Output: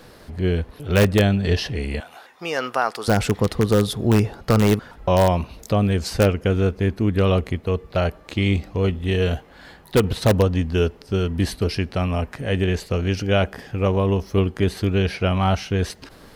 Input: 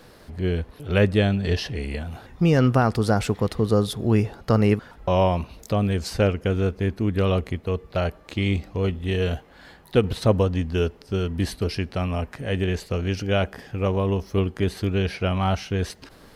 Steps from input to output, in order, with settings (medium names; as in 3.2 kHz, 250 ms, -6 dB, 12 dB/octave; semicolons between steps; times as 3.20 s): 2.00–3.08 s: high-pass 700 Hz 12 dB/octave; in parallel at -7 dB: integer overflow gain 10.5 dB